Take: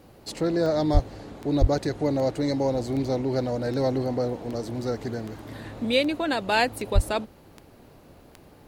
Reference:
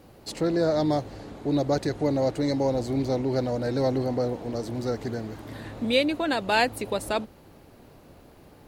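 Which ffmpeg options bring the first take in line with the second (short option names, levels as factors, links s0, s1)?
-filter_complex "[0:a]adeclick=t=4,asplit=3[s0][s1][s2];[s0]afade=t=out:st=0.93:d=0.02[s3];[s1]highpass=f=140:w=0.5412,highpass=f=140:w=1.3066,afade=t=in:st=0.93:d=0.02,afade=t=out:st=1.05:d=0.02[s4];[s2]afade=t=in:st=1.05:d=0.02[s5];[s3][s4][s5]amix=inputs=3:normalize=0,asplit=3[s6][s7][s8];[s6]afade=t=out:st=1.6:d=0.02[s9];[s7]highpass=f=140:w=0.5412,highpass=f=140:w=1.3066,afade=t=in:st=1.6:d=0.02,afade=t=out:st=1.72:d=0.02[s10];[s8]afade=t=in:st=1.72:d=0.02[s11];[s9][s10][s11]amix=inputs=3:normalize=0,asplit=3[s12][s13][s14];[s12]afade=t=out:st=6.94:d=0.02[s15];[s13]highpass=f=140:w=0.5412,highpass=f=140:w=1.3066,afade=t=in:st=6.94:d=0.02,afade=t=out:st=7.06:d=0.02[s16];[s14]afade=t=in:st=7.06:d=0.02[s17];[s15][s16][s17]amix=inputs=3:normalize=0"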